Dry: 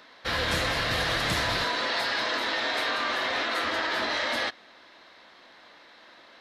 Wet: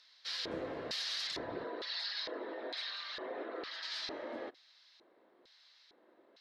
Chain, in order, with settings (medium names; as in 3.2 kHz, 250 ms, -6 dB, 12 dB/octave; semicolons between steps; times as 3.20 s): 1.27–3.83 s: resonances exaggerated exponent 1.5; LFO band-pass square 1.1 Hz 380–4900 Hz; trim -2 dB